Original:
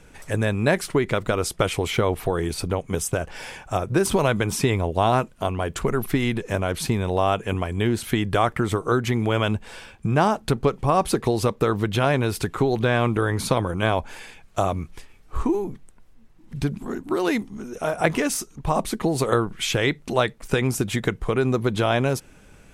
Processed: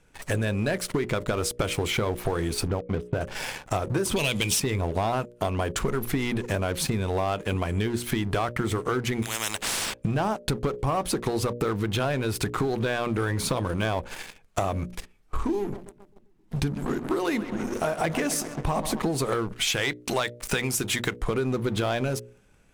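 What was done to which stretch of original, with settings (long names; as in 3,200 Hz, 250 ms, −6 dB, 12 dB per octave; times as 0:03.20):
0:02.68–0:03.21: high-frequency loss of the air 470 metres
0:04.16–0:04.60: high shelf with overshoot 2,000 Hz +11 dB, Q 3
0:09.22–0:09.94: every bin compressed towards the loudest bin 10 to 1
0:15.59–0:19.00: feedback echo with a low-pass in the loop 133 ms, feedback 66%, level −13 dB
0:19.67–0:21.23: tilt shelving filter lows −5 dB
whole clip: leveller curve on the samples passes 3; mains-hum notches 60/120/180/240/300/360/420/480/540/600 Hz; downward compressor 5 to 1, threshold −19 dBFS; level −5 dB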